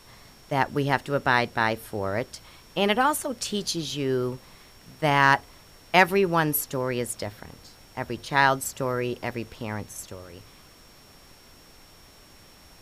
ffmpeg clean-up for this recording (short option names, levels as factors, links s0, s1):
-af "bandreject=f=5500:w=30,afftdn=nr=18:nf=-52"